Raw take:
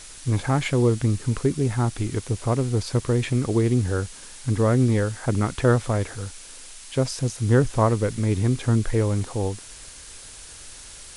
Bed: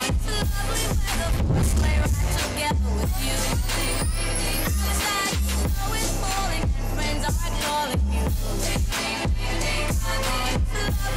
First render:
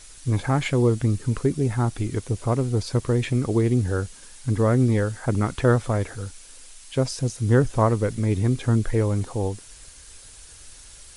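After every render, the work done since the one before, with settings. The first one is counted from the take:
broadband denoise 6 dB, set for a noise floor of −43 dBFS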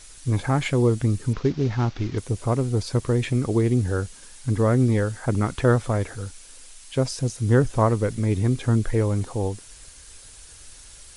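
0:01.33–0:02.18: variable-slope delta modulation 32 kbit/s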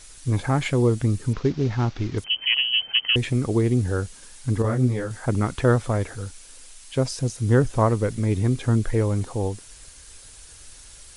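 0:02.24–0:03.16: voice inversion scrambler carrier 3,100 Hz
0:04.62–0:05.11: micro pitch shift up and down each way 28 cents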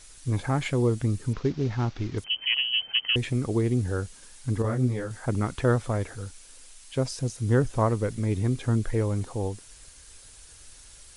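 level −4 dB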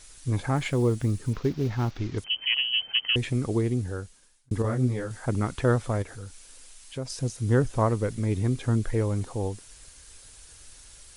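0:00.56–0:01.98: one scale factor per block 7 bits
0:03.54–0:04.51: fade out
0:06.02–0:07.10: downward compressor 1.5 to 1, threshold −41 dBFS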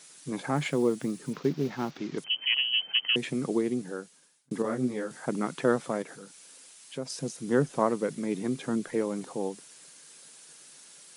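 elliptic high-pass filter 150 Hz, stop band 40 dB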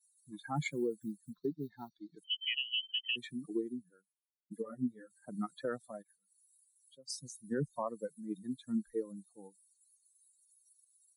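spectral dynamics exaggerated over time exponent 3
brickwall limiter −25.5 dBFS, peak gain reduction 10.5 dB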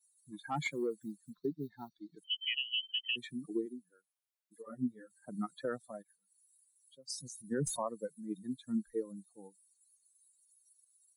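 0:00.49–0:01.37: mid-hump overdrive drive 9 dB, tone 5,200 Hz, clips at −25 dBFS
0:03.65–0:04.66: high-pass filter 270 Hz → 830 Hz
0:07.14–0:07.87: level that may fall only so fast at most 71 dB per second

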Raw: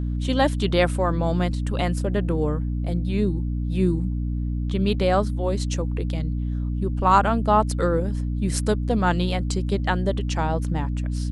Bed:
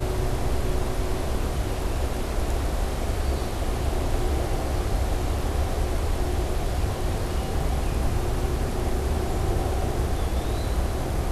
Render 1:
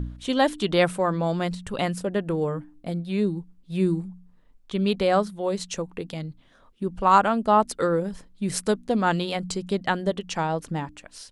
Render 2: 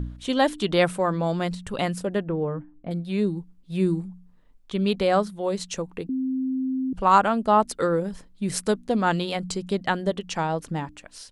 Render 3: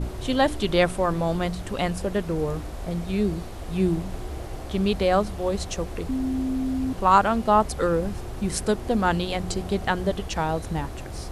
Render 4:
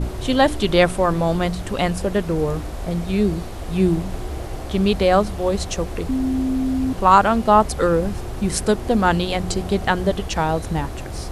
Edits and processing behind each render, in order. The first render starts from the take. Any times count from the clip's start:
hum removal 60 Hz, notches 5
0:02.23–0:02.91: high-frequency loss of the air 470 metres; 0:06.09–0:06.93: beep over 261 Hz −23 dBFS
mix in bed −9 dB
level +5 dB; brickwall limiter −1 dBFS, peak gain reduction 1.5 dB

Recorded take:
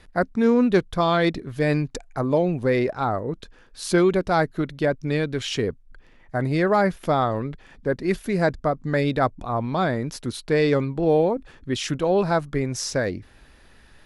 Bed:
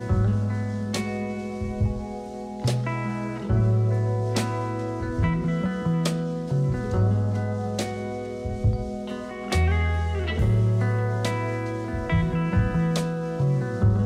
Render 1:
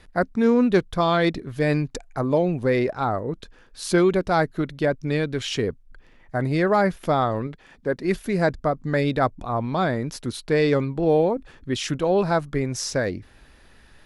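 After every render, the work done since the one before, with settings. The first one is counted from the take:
0:07.47–0:08.04: low-shelf EQ 110 Hz −10 dB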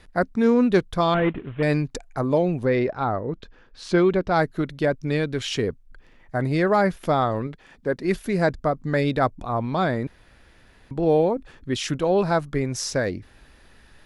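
0:01.14–0:01.63: variable-slope delta modulation 16 kbit/s
0:02.65–0:04.36: high-frequency loss of the air 120 metres
0:10.07–0:10.91: fill with room tone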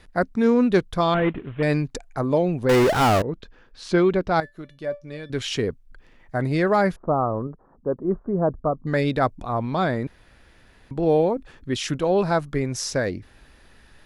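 0:02.69–0:03.22: power curve on the samples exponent 0.35
0:04.40–0:05.30: tuned comb filter 580 Hz, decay 0.21 s, mix 80%
0:06.96–0:08.87: elliptic low-pass filter 1,200 Hz, stop band 60 dB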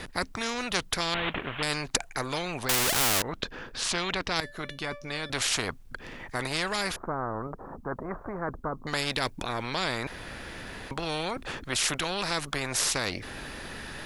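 every bin compressed towards the loudest bin 4 to 1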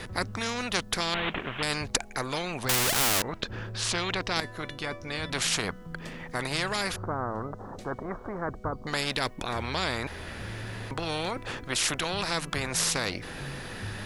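mix in bed −19 dB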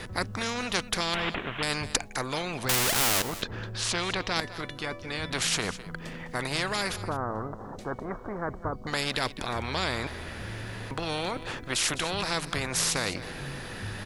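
single-tap delay 206 ms −15 dB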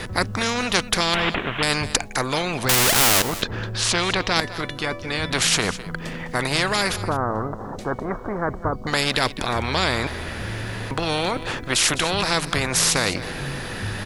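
level +8 dB
brickwall limiter −2 dBFS, peak gain reduction 3 dB

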